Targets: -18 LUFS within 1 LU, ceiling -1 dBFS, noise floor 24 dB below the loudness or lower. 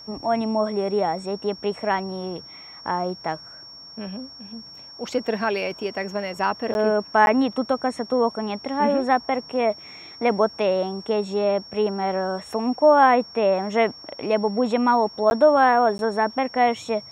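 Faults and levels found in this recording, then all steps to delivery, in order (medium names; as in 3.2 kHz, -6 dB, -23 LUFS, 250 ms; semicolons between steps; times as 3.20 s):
dropouts 4; longest dropout 11 ms; steady tone 5.5 kHz; tone level -40 dBFS; loudness -22.5 LUFS; peak level -3.5 dBFS; loudness target -18.0 LUFS
-> interpolate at 6.74/7.26/15.30/15.98 s, 11 ms; band-stop 5.5 kHz, Q 30; trim +4.5 dB; peak limiter -1 dBFS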